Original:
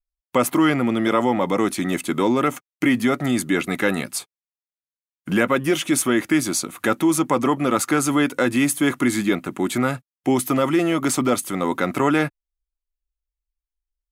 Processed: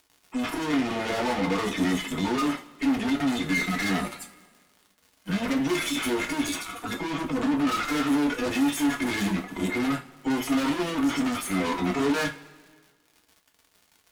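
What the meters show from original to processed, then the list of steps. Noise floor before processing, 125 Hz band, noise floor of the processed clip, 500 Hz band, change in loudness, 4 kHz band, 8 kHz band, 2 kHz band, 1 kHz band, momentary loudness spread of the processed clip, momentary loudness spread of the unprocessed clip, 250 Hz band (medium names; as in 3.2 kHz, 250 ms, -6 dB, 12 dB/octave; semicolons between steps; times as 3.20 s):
under -85 dBFS, -7.0 dB, -65 dBFS, -9.0 dB, -6.0 dB, -2.0 dB, -10.0 dB, -4.5 dB, -6.5 dB, 6 LU, 5 LU, -5.0 dB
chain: harmonic-percussive separation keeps harmonic; overdrive pedal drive 24 dB, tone 7.5 kHz, clips at -7.5 dBFS; crackle 130 per s -38 dBFS; valve stage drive 23 dB, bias 0.55; two-slope reverb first 0.24 s, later 1.7 s, from -21 dB, DRR 1.5 dB; trim -4 dB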